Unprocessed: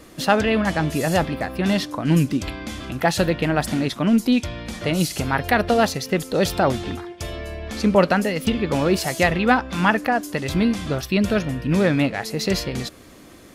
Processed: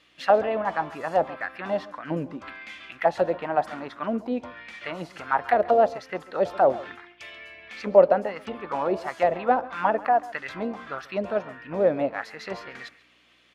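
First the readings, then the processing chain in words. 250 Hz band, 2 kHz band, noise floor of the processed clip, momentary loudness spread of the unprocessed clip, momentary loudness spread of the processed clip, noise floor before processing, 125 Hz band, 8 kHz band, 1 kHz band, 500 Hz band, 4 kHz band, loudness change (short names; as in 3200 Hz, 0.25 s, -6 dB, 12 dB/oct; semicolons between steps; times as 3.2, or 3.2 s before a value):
-13.5 dB, -8.5 dB, -59 dBFS, 11 LU, 18 LU, -45 dBFS, -18.0 dB, under -20 dB, -0.5 dB, -0.5 dB, -15.5 dB, -4.5 dB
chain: hum 60 Hz, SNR 19 dB; auto-wah 590–3400 Hz, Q 2.7, down, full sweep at -14 dBFS; on a send: echo 0.137 s -19 dB; on the sum: mismatched tape noise reduction decoder only; gain +3.5 dB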